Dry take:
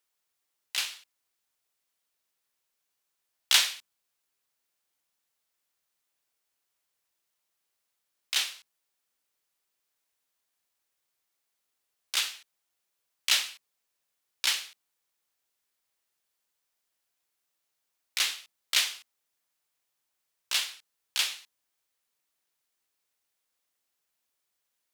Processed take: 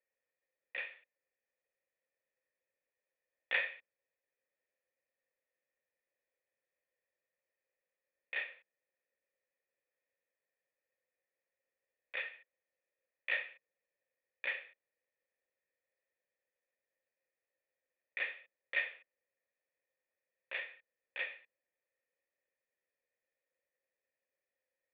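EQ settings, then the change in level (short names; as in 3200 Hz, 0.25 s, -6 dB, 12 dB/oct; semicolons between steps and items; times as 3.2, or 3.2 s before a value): vocal tract filter e; +9.5 dB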